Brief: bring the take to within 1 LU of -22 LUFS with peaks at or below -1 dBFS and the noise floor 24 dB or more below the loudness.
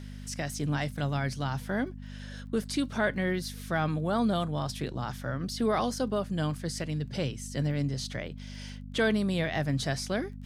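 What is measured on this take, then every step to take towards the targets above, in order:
tick rate 28 per s; hum 50 Hz; highest harmonic 250 Hz; hum level -39 dBFS; loudness -31.0 LUFS; peak level -15.5 dBFS; loudness target -22.0 LUFS
-> de-click; de-hum 50 Hz, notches 5; trim +9 dB

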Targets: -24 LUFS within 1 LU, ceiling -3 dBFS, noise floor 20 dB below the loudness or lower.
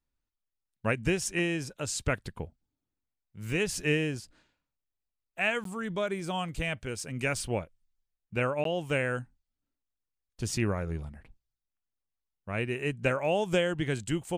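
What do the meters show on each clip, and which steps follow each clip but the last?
dropouts 2; longest dropout 13 ms; loudness -31.0 LUFS; peak level -13.5 dBFS; loudness target -24.0 LUFS
-> interpolate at 5.64/8.64 s, 13 ms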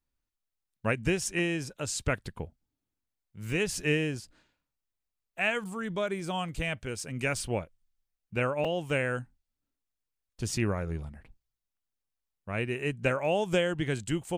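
dropouts 0; loudness -31.0 LUFS; peak level -13.5 dBFS; loudness target -24.0 LUFS
-> trim +7 dB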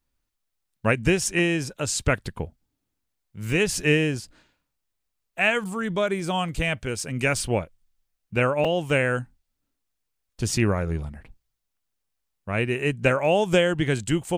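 loudness -24.0 LUFS; peak level -6.5 dBFS; noise floor -80 dBFS

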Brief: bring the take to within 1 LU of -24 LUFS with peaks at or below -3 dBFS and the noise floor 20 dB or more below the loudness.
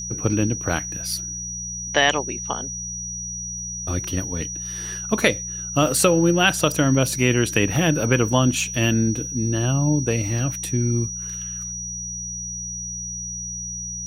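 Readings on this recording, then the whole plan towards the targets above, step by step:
hum 60 Hz; highest harmonic 180 Hz; hum level -35 dBFS; steady tone 5.8 kHz; tone level -29 dBFS; loudness -22.5 LUFS; peak level -2.0 dBFS; loudness target -24.0 LUFS
-> de-hum 60 Hz, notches 3; band-stop 5.8 kHz, Q 30; trim -1.5 dB

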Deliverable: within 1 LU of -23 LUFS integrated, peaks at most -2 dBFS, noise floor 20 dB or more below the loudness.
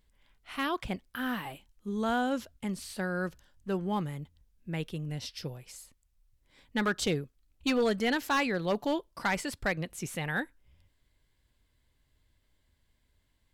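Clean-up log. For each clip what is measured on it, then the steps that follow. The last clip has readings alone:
clipped samples 0.6%; clipping level -22.0 dBFS; loudness -32.5 LUFS; peak level -22.0 dBFS; loudness target -23.0 LUFS
-> clip repair -22 dBFS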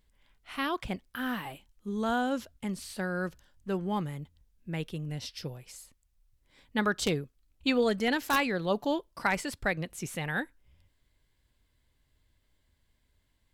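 clipped samples 0.0%; loudness -32.0 LUFS; peak level -13.0 dBFS; loudness target -23.0 LUFS
-> trim +9 dB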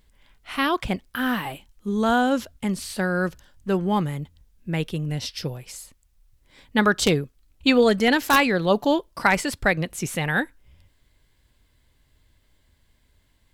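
loudness -23.0 LUFS; peak level -4.0 dBFS; noise floor -64 dBFS

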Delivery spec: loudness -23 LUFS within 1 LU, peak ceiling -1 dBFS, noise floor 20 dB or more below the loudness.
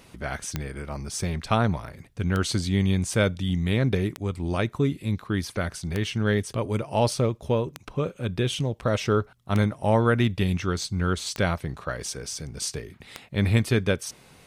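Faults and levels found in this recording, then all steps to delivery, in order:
clicks found 8; loudness -26.5 LUFS; peak level -8.5 dBFS; loudness target -23.0 LUFS
-> de-click; trim +3.5 dB

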